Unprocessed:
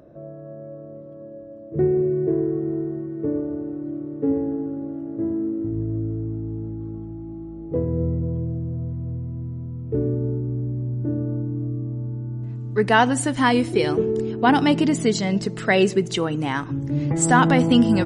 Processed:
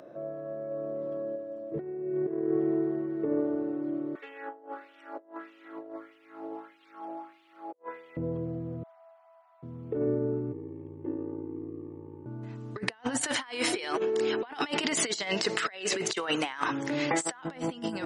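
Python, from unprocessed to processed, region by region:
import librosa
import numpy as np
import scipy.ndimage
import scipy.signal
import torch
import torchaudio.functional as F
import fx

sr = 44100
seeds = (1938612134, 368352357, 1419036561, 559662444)

y = fx.chain(x, sr, fx.doubler(ms=27.0, db=-11),
    fx.env_flatten(amount_pct=100), at=(0.71, 1.36))
y = fx.chain(y, sr, fx.highpass(hz=150.0, slope=12),
    fx.filter_lfo_highpass(shape='sine', hz=1.6, low_hz=640.0, high_hz=2800.0, q=2.7),
    fx.over_compress(threshold_db=-43.0, ratio=-0.5), at=(4.15, 8.17))
y = fx.chain(y, sr, fx.brickwall_highpass(low_hz=630.0),
    fx.high_shelf(hz=2300.0, db=-9.5), at=(8.83, 9.63))
y = fx.chain(y, sr, fx.ring_mod(carrier_hz=28.0),
    fx.fixed_phaser(hz=940.0, stages=8), at=(10.52, 12.26))
y = fx.chain(y, sr, fx.highpass(hz=1100.0, slope=6),
    fx.high_shelf(hz=5200.0, db=-5.5),
    fx.env_flatten(amount_pct=50), at=(13.21, 17.43))
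y = fx.weighting(y, sr, curve='A')
y = fx.over_compress(y, sr, threshold_db=-30.0, ratio=-0.5)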